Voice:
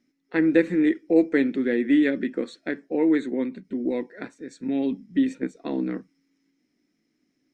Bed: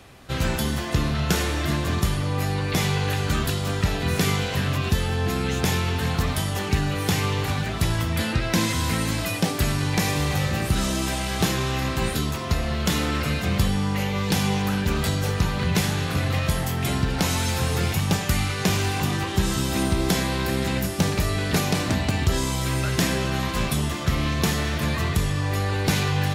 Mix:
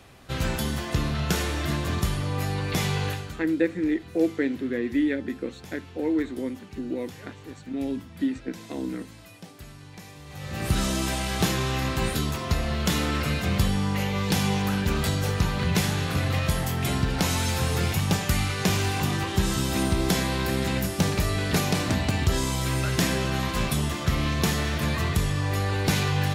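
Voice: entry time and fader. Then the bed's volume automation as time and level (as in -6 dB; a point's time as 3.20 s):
3.05 s, -4.5 dB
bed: 3.07 s -3 dB
3.46 s -21.5 dB
10.24 s -21.5 dB
10.69 s -1.5 dB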